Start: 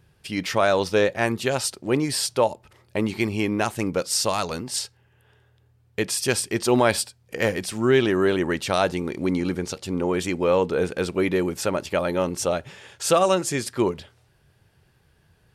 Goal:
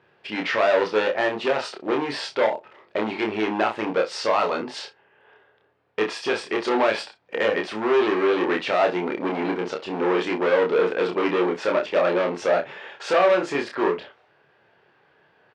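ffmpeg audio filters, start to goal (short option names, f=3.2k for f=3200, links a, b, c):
-filter_complex "[0:a]aemphasis=mode=reproduction:type=75fm,asplit=2[a][b];[b]alimiter=limit=-14.5dB:level=0:latency=1:release=86,volume=2.5dB[c];[a][c]amix=inputs=2:normalize=0,asoftclip=type=hard:threshold=-15.5dB,highpass=450,lowpass=3.2k,aecho=1:1:28|63:0.708|0.188"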